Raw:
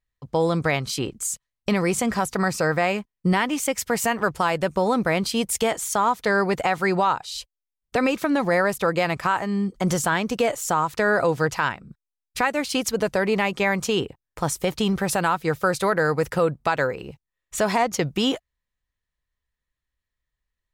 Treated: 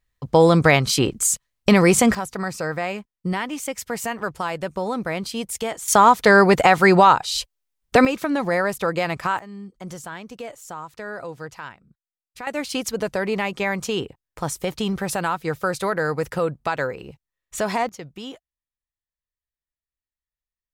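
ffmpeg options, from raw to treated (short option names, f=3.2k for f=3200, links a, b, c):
-af "asetnsamples=n=441:p=0,asendcmd='2.15 volume volume -4.5dB;5.88 volume volume 8dB;8.05 volume volume -1dB;9.39 volume volume -13dB;12.47 volume volume -2dB;17.89 volume volume -13.5dB',volume=7.5dB"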